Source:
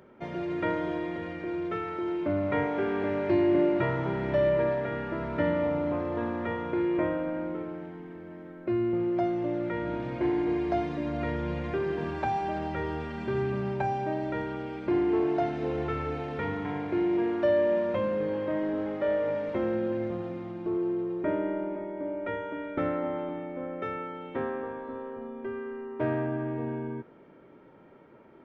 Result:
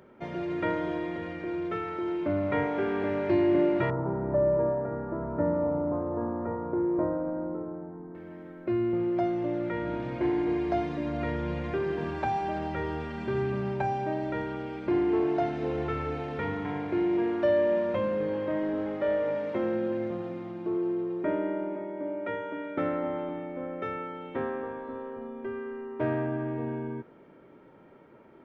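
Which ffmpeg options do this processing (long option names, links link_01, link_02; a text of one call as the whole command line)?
ffmpeg -i in.wav -filter_complex "[0:a]asettb=1/sr,asplit=3[link_01][link_02][link_03];[link_01]atrim=end=3.904[link_04];[link_02]atrim=start=3.9:end=8.15,asetpts=PTS-STARTPTS,afade=type=in:duration=0.004:curve=qsin,afade=type=out:start_time=4.246:duration=0.004:curve=qsin,lowpass=frequency=1200:width=0.5412,lowpass=frequency=1200:width=1.3066[link_05];[link_03]atrim=start=8.146[link_06];[link_04][link_05]acrossfade=duration=0.004:curve1=hsin:curve2=qsin[link_07];[link_07][link_06]acrossfade=duration=0.004:curve1=qsin:curve2=hsin,asettb=1/sr,asplit=3[link_08][link_09][link_10];[link_08]atrim=end=19.244[link_11];[link_09]atrim=start=19.24:end=22.93,asetpts=PTS-STARTPTS,afade=type=in:duration=0.004:curve=qsin,afade=type=out:start_time=3.686:duration=0.004:curve=qsin,highpass=120[link_12];[link_10]atrim=start=22.926[link_13];[link_11][link_12]acrossfade=duration=0.004:curve1=hsin:curve2=qsin[link_14];[link_14][link_13]acrossfade=duration=0.004:curve1=qsin:curve2=hsin" out.wav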